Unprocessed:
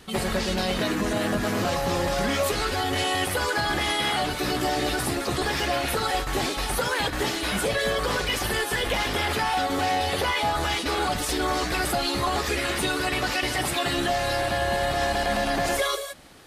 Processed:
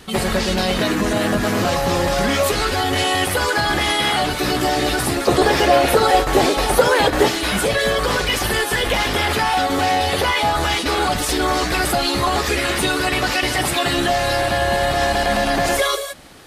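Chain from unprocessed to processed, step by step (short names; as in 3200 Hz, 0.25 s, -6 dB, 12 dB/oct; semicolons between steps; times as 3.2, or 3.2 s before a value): 5.27–7.28 bell 510 Hz +8.5 dB 1.7 oct; gain +6.5 dB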